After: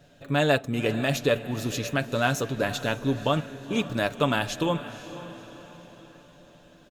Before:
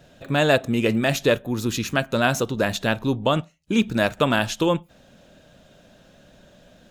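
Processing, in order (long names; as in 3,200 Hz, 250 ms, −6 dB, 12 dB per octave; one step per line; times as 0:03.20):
comb filter 7 ms, depth 39%
on a send: feedback delay with all-pass diffusion 511 ms, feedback 48%, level −13.5 dB
on the sum: level −5 dB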